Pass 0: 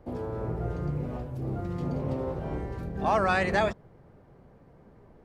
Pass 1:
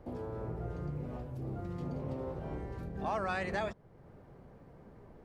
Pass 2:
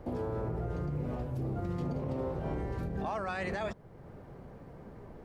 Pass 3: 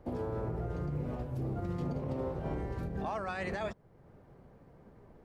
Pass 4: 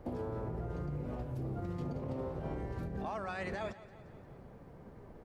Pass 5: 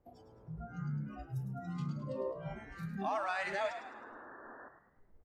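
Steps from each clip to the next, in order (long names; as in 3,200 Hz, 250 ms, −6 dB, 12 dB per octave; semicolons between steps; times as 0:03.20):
downward compressor 1.5 to 1, threshold −49 dBFS, peak gain reduction 10.5 dB
brickwall limiter −32.5 dBFS, peak gain reduction 10 dB; level +6 dB
expander for the loud parts 1.5 to 1, over −49 dBFS
downward compressor 2 to 1, threshold −45 dBFS, peak gain reduction 7.5 dB; repeating echo 174 ms, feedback 59%, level −16.5 dB; level +4 dB
noise reduction from a noise print of the clip's start 26 dB; sound drawn into the spectrogram noise, 0:03.76–0:04.69, 210–1,800 Hz −57 dBFS; echo with shifted repeats 105 ms, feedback 43%, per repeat +65 Hz, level −10 dB; level +5 dB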